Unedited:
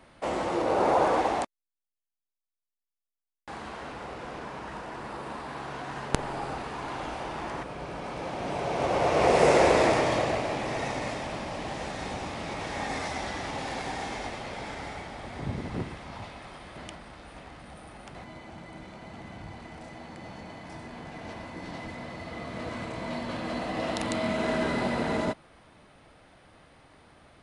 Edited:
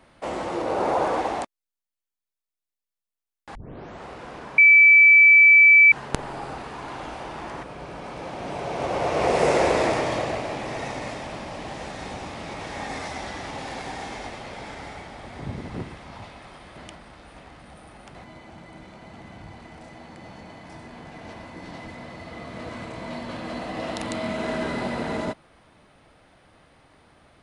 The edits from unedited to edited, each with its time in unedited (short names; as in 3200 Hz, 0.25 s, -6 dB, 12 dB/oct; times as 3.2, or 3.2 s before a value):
3.55 tape start 0.51 s
4.58–5.92 bleep 2310 Hz -9 dBFS